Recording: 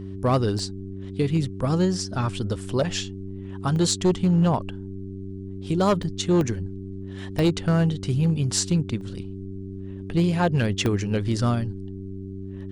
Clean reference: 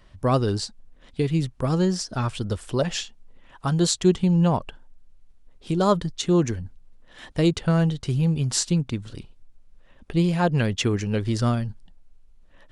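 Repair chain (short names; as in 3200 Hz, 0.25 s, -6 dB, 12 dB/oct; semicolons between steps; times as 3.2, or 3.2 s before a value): clip repair -14 dBFS; de-hum 96.5 Hz, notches 4; interpolate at 0.59/3.76/6.03/6.41/7.39/9.01/10.86, 1.1 ms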